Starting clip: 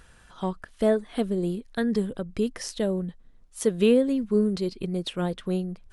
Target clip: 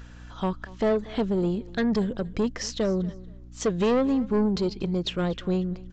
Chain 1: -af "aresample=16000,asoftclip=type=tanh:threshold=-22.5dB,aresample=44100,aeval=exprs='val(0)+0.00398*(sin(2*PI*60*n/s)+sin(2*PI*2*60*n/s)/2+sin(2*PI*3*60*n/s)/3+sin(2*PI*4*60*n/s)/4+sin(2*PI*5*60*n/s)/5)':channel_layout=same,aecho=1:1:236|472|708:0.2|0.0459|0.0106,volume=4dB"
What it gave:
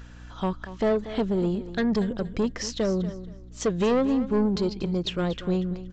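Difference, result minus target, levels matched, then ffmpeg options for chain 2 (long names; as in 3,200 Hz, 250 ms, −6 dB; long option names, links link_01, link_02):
echo-to-direct +6.5 dB
-af "aresample=16000,asoftclip=type=tanh:threshold=-22.5dB,aresample=44100,aeval=exprs='val(0)+0.00398*(sin(2*PI*60*n/s)+sin(2*PI*2*60*n/s)/2+sin(2*PI*3*60*n/s)/3+sin(2*PI*4*60*n/s)/4+sin(2*PI*5*60*n/s)/5)':channel_layout=same,aecho=1:1:236|472:0.0944|0.0217,volume=4dB"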